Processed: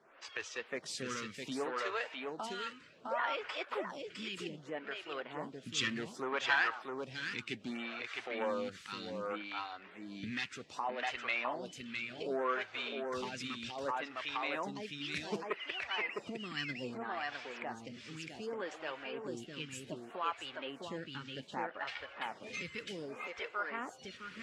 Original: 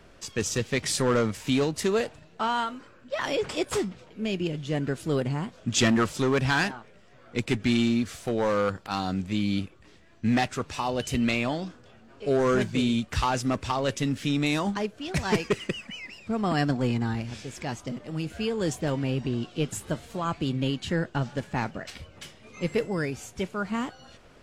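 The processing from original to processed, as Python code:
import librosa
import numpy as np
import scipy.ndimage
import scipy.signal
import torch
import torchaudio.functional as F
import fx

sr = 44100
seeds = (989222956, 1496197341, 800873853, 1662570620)

y = fx.spec_quant(x, sr, step_db=15)
y = fx.recorder_agc(y, sr, target_db=-21.0, rise_db_per_s=28.0, max_gain_db=30)
y = fx.bandpass_q(y, sr, hz=2600.0, q=0.59)
y = fx.high_shelf(y, sr, hz=3700.0, db=-11.0)
y = y + 10.0 ** (-4.0 / 20.0) * np.pad(y, (int(658 * sr / 1000.0), 0))[:len(y)]
y = fx.stagger_phaser(y, sr, hz=0.65)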